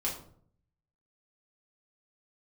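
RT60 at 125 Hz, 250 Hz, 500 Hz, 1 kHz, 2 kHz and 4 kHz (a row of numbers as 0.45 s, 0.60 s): 0.95 s, 0.75 s, 0.65 s, 0.50 s, 0.40 s, 0.35 s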